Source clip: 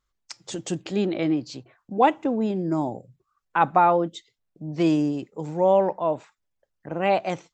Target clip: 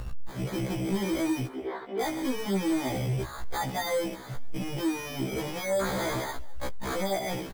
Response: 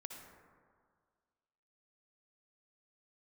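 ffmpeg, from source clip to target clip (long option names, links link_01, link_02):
-filter_complex "[0:a]aeval=exprs='val(0)+0.5*0.0891*sgn(val(0))':channel_layout=same,afwtdn=0.0501,equalizer=frequency=1200:width_type=o:width=0.49:gain=-8.5,acompressor=mode=upward:threshold=-28dB:ratio=2.5,alimiter=limit=-16.5dB:level=0:latency=1:release=272,acrusher=samples=16:mix=1:aa=0.000001,acontrast=27,asplit=3[link_01][link_02][link_03];[link_01]afade=type=out:start_time=5.8:duration=0.02[link_04];[link_02]aeval=exprs='0.266*(cos(1*acos(clip(val(0)/0.266,-1,1)))-cos(1*PI/2))+0.0531*(cos(3*acos(clip(val(0)/0.266,-1,1)))-cos(3*PI/2))+0.119*(cos(7*acos(clip(val(0)/0.266,-1,1)))-cos(7*PI/2))':channel_layout=same,afade=type=in:start_time=5.8:duration=0.02,afade=type=out:start_time=6.95:duration=0.02[link_05];[link_03]afade=type=in:start_time=6.95:duration=0.02[link_06];[link_04][link_05][link_06]amix=inputs=3:normalize=0,asoftclip=type=tanh:threshold=-20dB,asettb=1/sr,asplit=3[link_07][link_08][link_09];[link_07]atrim=end=1.474[link_10];[link_08]atrim=start=1.47:end=2.01,asetpts=PTS-STARTPTS,afade=type=in:duration=0.004:curve=qsin,afade=type=out:start_time=0.536:duration=0.004:curve=qsin,highpass=frequency=330:width=0.5412,highpass=frequency=330:width=1.3066,equalizer=frequency=380:width_type=q:width=4:gain=6,equalizer=frequency=590:width_type=q:width=4:gain=-5,equalizer=frequency=840:width_type=q:width=4:gain=-4,equalizer=frequency=1200:width_type=q:width=4:gain=-5,equalizer=frequency=1700:width_type=q:width=4:gain=-5,equalizer=frequency=2500:width_type=q:width=4:gain=-7,lowpass=frequency=2700:width=0.5412,lowpass=frequency=2700:width=1.3066[link_11];[link_09]atrim=start=2.006[link_12];[link_10][link_11]acrossfade=duration=0.004:curve1=hsin:curve2=qsin[link_13];[link_13][link_12]acrossfade=duration=0.004:curve1=qsin:curve2=hsin,asplit=4[link_14][link_15][link_16][link_17];[link_15]adelay=204,afreqshift=-48,volume=-23dB[link_18];[link_16]adelay=408,afreqshift=-96,volume=-31dB[link_19];[link_17]adelay=612,afreqshift=-144,volume=-38.9dB[link_20];[link_14][link_18][link_19][link_20]amix=inputs=4:normalize=0,afftfilt=real='re*1.73*eq(mod(b,3),0)':imag='im*1.73*eq(mod(b,3),0)':win_size=2048:overlap=0.75,volume=-4dB"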